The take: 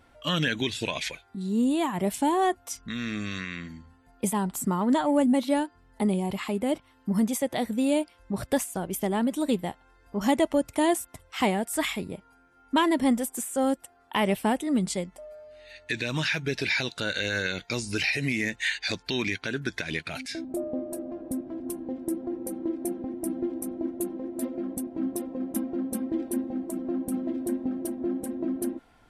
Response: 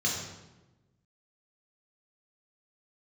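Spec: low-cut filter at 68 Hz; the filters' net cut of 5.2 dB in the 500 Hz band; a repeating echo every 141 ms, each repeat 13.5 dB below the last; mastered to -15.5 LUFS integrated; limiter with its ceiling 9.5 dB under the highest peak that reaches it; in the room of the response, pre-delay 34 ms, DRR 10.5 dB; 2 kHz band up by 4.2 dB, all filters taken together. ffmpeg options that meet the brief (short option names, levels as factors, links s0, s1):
-filter_complex "[0:a]highpass=68,equalizer=f=500:t=o:g=-7.5,equalizer=f=2000:t=o:g=5.5,alimiter=limit=0.0944:level=0:latency=1,aecho=1:1:141|282:0.211|0.0444,asplit=2[s0][s1];[1:a]atrim=start_sample=2205,adelay=34[s2];[s1][s2]afir=irnorm=-1:irlink=0,volume=0.112[s3];[s0][s3]amix=inputs=2:normalize=0,volume=5.96"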